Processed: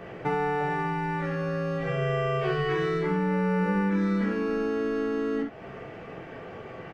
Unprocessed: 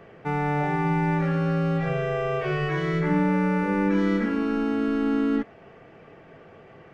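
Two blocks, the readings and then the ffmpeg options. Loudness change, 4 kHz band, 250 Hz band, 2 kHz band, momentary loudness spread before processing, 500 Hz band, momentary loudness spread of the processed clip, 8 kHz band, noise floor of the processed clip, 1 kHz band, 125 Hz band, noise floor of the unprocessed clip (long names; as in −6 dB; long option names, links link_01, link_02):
−3.0 dB, 0.0 dB, −4.5 dB, −1.5 dB, 4 LU, 0.0 dB, 16 LU, can't be measured, −43 dBFS, −1.5 dB, −4.0 dB, −50 dBFS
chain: -af "acompressor=threshold=-32dB:ratio=5,aecho=1:1:16|45|66:0.562|0.596|0.531,volume=5dB"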